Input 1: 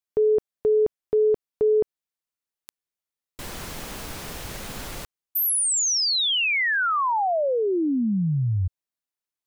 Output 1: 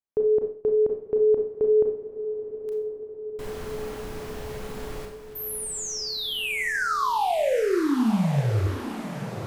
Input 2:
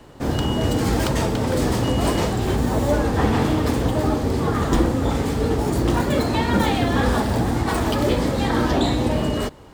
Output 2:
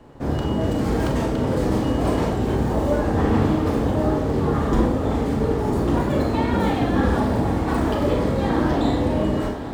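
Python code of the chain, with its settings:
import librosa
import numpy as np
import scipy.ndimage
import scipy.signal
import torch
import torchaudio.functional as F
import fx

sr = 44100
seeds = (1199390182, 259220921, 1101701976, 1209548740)

y = fx.high_shelf(x, sr, hz=2100.0, db=-11.0)
y = fx.echo_diffused(y, sr, ms=970, feedback_pct=63, wet_db=-11.5)
y = fx.rev_schroeder(y, sr, rt60_s=0.47, comb_ms=28, drr_db=2.5)
y = y * librosa.db_to_amplitude(-1.5)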